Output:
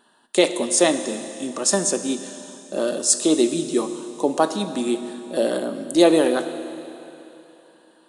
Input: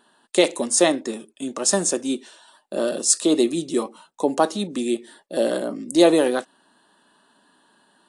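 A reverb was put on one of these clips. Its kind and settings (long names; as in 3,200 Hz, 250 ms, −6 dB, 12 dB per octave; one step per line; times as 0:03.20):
four-comb reverb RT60 3.1 s, combs from 25 ms, DRR 9.5 dB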